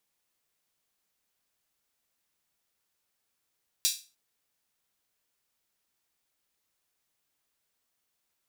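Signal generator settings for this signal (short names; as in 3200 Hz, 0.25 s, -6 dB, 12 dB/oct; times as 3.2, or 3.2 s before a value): open hi-hat length 0.30 s, high-pass 4100 Hz, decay 0.32 s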